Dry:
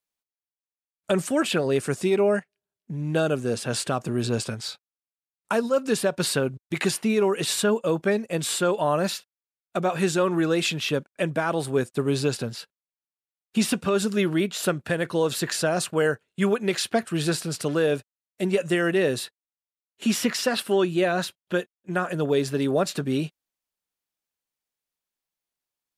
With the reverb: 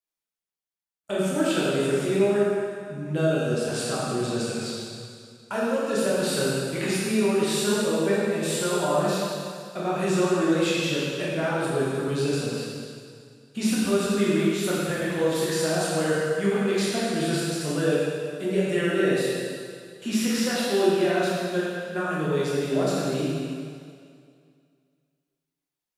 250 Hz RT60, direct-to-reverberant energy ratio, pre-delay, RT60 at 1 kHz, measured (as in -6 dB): 2.2 s, -8.0 dB, 6 ms, 2.2 s